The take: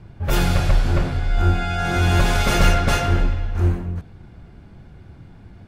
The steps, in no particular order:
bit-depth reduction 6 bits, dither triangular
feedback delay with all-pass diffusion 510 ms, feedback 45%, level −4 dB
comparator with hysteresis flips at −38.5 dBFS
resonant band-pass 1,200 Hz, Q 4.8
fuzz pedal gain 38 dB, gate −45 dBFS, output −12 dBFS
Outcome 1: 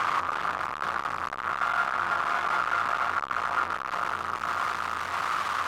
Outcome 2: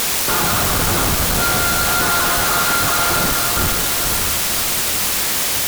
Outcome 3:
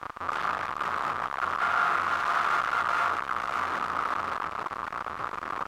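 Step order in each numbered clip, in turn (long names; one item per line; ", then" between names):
bit-depth reduction, then feedback delay with all-pass diffusion, then comparator with hysteresis, then fuzz pedal, then resonant band-pass
resonant band-pass, then comparator with hysteresis, then feedback delay with all-pass diffusion, then bit-depth reduction, then fuzz pedal
comparator with hysteresis, then feedback delay with all-pass diffusion, then fuzz pedal, then bit-depth reduction, then resonant band-pass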